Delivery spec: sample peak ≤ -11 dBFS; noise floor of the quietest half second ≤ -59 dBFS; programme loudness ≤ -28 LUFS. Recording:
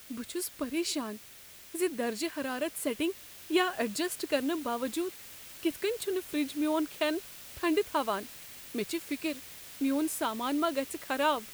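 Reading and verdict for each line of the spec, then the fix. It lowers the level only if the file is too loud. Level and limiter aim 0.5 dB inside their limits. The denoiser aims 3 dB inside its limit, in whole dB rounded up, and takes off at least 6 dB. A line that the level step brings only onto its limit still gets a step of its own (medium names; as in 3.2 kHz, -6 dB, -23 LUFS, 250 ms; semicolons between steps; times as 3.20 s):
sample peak -14.5 dBFS: pass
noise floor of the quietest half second -51 dBFS: fail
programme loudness -32.5 LUFS: pass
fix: noise reduction 11 dB, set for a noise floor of -51 dBFS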